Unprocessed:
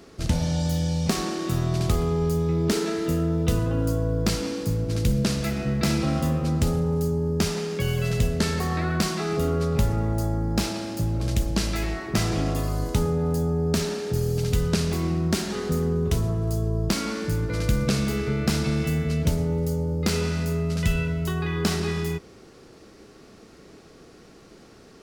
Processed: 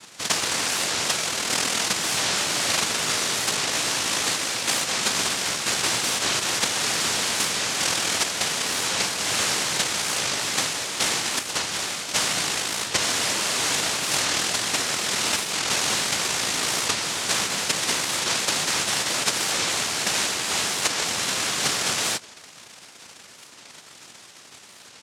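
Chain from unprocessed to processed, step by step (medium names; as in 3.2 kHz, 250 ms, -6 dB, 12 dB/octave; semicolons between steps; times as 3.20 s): comb 2.1 ms; gain riding 0.5 s; noise-vocoded speech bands 1; warped record 45 rpm, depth 160 cents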